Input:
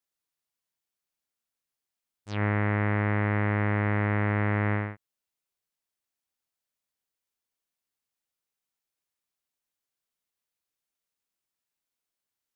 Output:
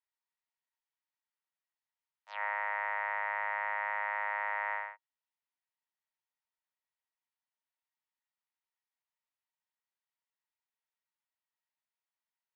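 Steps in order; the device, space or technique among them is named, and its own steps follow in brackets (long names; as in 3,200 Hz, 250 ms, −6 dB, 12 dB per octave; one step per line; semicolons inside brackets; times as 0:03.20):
Butterworth high-pass 540 Hz 72 dB per octave
tin-can telephone (band-pass filter 660–3,200 Hz; hollow resonant body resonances 930/1,900 Hz, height 11 dB, ringing for 50 ms)
level −4.5 dB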